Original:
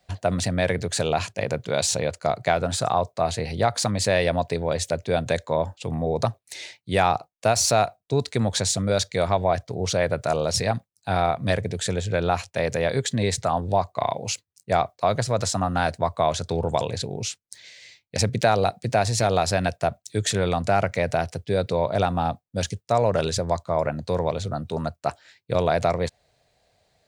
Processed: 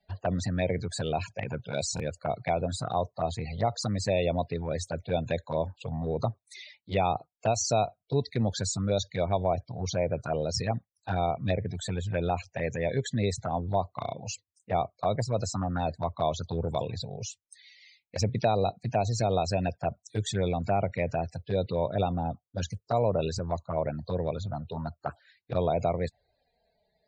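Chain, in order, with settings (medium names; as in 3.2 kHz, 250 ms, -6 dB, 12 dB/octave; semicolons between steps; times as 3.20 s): loudest bins only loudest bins 64; touch-sensitive flanger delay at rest 4.8 ms, full sweep at -18 dBFS; buffer glitch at 1.95 s, samples 1024, times 1; trim -3.5 dB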